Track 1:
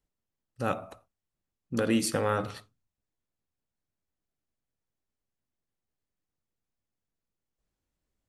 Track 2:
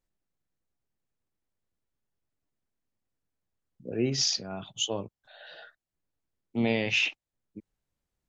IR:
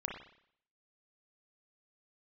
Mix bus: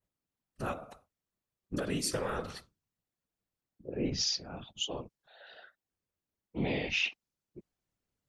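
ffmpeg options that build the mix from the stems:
-filter_complex "[0:a]acompressor=threshold=-29dB:ratio=2,volume=3dB[link_01];[1:a]equalizer=frequency=8000:width_type=o:width=1.2:gain=-9.5,volume=0.5dB[link_02];[link_01][link_02]amix=inputs=2:normalize=0,highpass=46,adynamicequalizer=threshold=0.00562:dfrequency=5600:dqfactor=1.1:tfrequency=5600:tqfactor=1.1:attack=5:release=100:ratio=0.375:range=3.5:mode=boostabove:tftype=bell,afftfilt=real='hypot(re,im)*cos(2*PI*random(0))':imag='hypot(re,im)*sin(2*PI*random(1))':win_size=512:overlap=0.75"

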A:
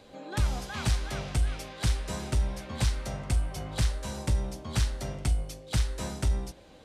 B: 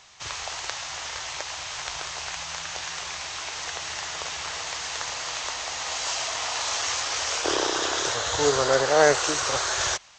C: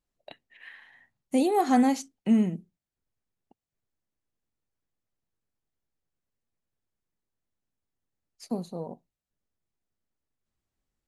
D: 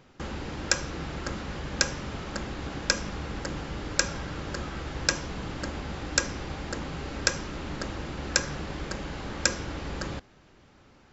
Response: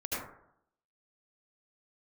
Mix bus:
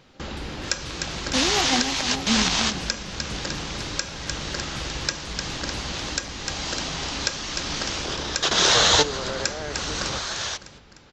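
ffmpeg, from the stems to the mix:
-filter_complex "[0:a]volume=-14dB,asplit=2[link_01][link_02];[link_02]volume=-10dB[link_03];[1:a]acrossover=split=6800[link_04][link_05];[link_05]acompressor=threshold=-46dB:ratio=4:attack=1:release=60[link_06];[link_04][link_06]amix=inputs=2:normalize=0,alimiter=limit=-16dB:level=0:latency=1:release=74,acontrast=65,adelay=600,volume=2dB[link_07];[2:a]volume=-3.5dB,asplit=3[link_08][link_09][link_10];[link_09]volume=-7.5dB[link_11];[3:a]volume=1dB,asplit=2[link_12][link_13];[link_13]volume=-10dB[link_14];[link_10]apad=whole_len=475469[link_15];[link_07][link_15]sidechaingate=range=-14dB:threshold=-52dB:ratio=16:detection=peak[link_16];[link_03][link_11][link_14]amix=inputs=3:normalize=0,aecho=0:1:302|604|906|1208|1510|1812|2114:1|0.51|0.26|0.133|0.0677|0.0345|0.0176[link_17];[link_01][link_16][link_08][link_12][link_17]amix=inputs=5:normalize=0,equalizer=frequency=4000:width=0.95:gain=6.5,alimiter=limit=-5.5dB:level=0:latency=1:release=441"

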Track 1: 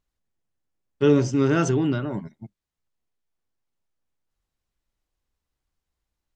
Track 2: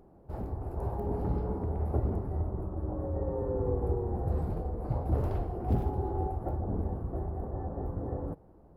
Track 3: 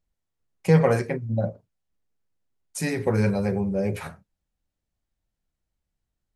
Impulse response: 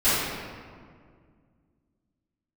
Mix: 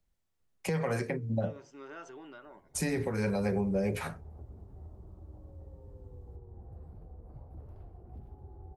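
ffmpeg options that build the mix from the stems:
-filter_complex "[0:a]highpass=680,highshelf=frequency=2800:gain=-12,acompressor=threshold=-31dB:ratio=2.5,adelay=400,volume=-12.5dB[link_01];[1:a]acrossover=split=80|160[link_02][link_03][link_04];[link_02]acompressor=threshold=-39dB:ratio=4[link_05];[link_03]acompressor=threshold=-45dB:ratio=4[link_06];[link_04]acompressor=threshold=-50dB:ratio=4[link_07];[link_05][link_06][link_07]amix=inputs=3:normalize=0,adelay=2450,volume=-9.5dB[link_08];[2:a]bandreject=frequency=151.6:width_type=h:width=4,bandreject=frequency=303.2:width_type=h:width=4,bandreject=frequency=454.8:width_type=h:width=4,acrossover=split=140|310|1100[link_09][link_10][link_11][link_12];[link_09]acompressor=threshold=-37dB:ratio=4[link_13];[link_10]acompressor=threshold=-31dB:ratio=4[link_14];[link_11]acompressor=threshold=-29dB:ratio=4[link_15];[link_12]acompressor=threshold=-34dB:ratio=4[link_16];[link_13][link_14][link_15][link_16]amix=inputs=4:normalize=0,volume=1.5dB[link_17];[link_01][link_08][link_17]amix=inputs=3:normalize=0,alimiter=limit=-21dB:level=0:latency=1:release=469"

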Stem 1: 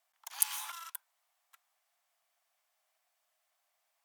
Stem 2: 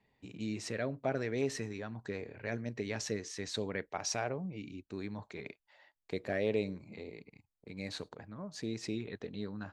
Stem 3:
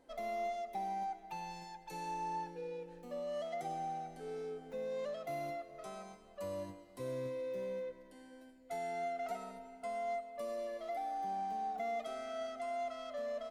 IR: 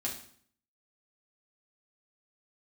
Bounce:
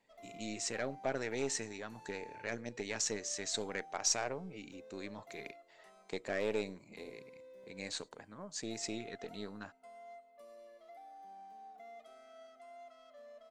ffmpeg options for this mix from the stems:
-filter_complex "[1:a]aeval=exprs='0.106*(cos(1*acos(clip(val(0)/0.106,-1,1)))-cos(1*PI/2))+0.00596*(cos(6*acos(clip(val(0)/0.106,-1,1)))-cos(6*PI/2))':channel_layout=same,lowpass=frequency=7500:width_type=q:width=4,volume=-1dB[link_01];[2:a]volume=-13.5dB[link_02];[link_01][link_02]amix=inputs=2:normalize=0,equalizer=frequency=63:width=0.39:gain=-13"

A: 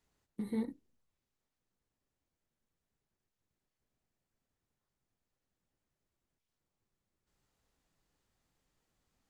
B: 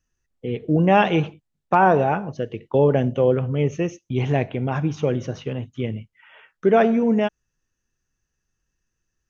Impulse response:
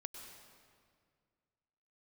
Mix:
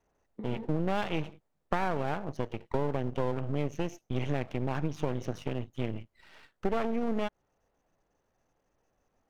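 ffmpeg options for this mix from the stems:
-filter_complex "[0:a]lowpass=2300,equalizer=frequency=600:width=0.82:gain=10.5,acompressor=threshold=-44dB:ratio=2.5,volume=1.5dB[link_01];[1:a]aeval=exprs='max(val(0),0)':channel_layout=same,volume=-2.5dB[link_02];[link_01][link_02]amix=inputs=2:normalize=0,acompressor=threshold=-25dB:ratio=5"

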